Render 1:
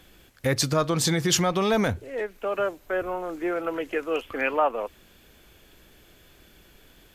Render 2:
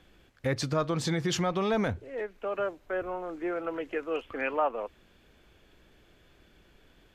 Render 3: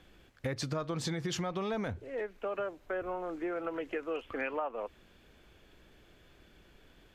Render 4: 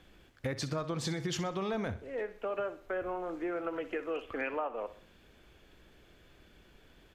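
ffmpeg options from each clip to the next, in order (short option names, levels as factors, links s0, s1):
-af "aemphasis=mode=reproduction:type=50fm,volume=0.562"
-af "acompressor=threshold=0.0251:ratio=5"
-af "aecho=1:1:63|126|189|252:0.2|0.0798|0.0319|0.0128"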